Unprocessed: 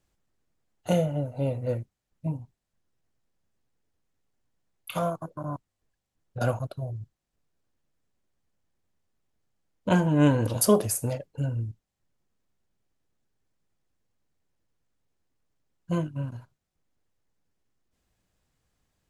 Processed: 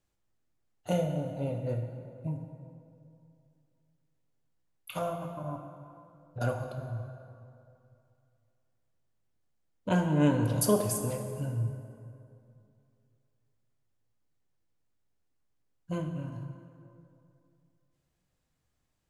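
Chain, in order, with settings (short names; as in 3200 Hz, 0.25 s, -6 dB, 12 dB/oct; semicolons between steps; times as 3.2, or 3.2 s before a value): plate-style reverb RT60 2.6 s, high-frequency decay 0.6×, DRR 4.5 dB; gain -5.5 dB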